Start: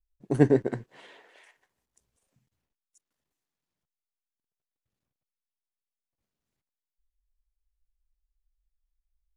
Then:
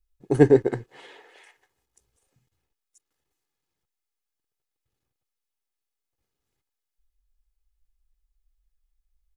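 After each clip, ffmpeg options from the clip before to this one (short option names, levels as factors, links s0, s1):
-af "aecho=1:1:2.4:0.46,volume=1.5"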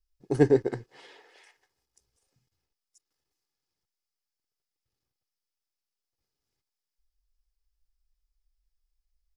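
-af "equalizer=f=5100:t=o:w=0.41:g=10.5,volume=0.562"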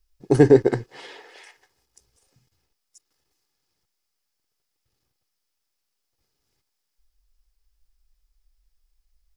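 -af "alimiter=level_in=3.76:limit=0.891:release=50:level=0:latency=1,volume=0.841"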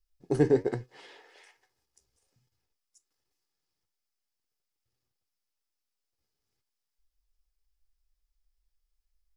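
-af "flanger=delay=7.9:depth=5.2:regen=69:speed=1.2:shape=sinusoidal,volume=0.531"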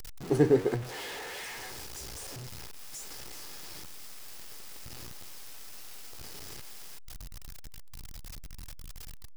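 -af "aeval=exprs='val(0)+0.5*0.0168*sgn(val(0))':c=same"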